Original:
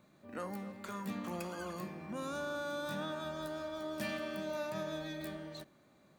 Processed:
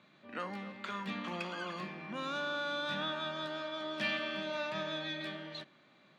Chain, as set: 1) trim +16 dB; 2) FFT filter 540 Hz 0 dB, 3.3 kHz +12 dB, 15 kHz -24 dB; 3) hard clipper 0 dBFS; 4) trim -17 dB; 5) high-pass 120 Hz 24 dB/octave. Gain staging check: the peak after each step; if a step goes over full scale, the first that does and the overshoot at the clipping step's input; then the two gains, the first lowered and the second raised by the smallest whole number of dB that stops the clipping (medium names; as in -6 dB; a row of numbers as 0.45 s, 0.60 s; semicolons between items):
-11.0 dBFS, -4.0 dBFS, -4.0 dBFS, -21.0 dBFS, -20.5 dBFS; nothing clips